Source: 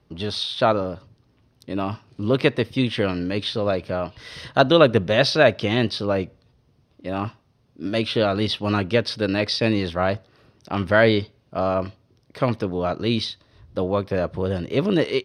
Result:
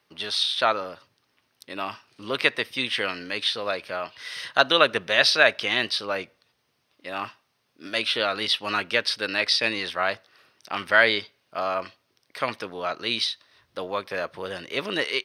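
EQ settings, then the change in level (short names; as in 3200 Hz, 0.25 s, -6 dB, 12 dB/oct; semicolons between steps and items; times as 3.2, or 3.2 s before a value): HPF 1100 Hz 6 dB/oct; bell 1900 Hz +6 dB 1.7 oct; high shelf 7600 Hz +10.5 dB; -1.0 dB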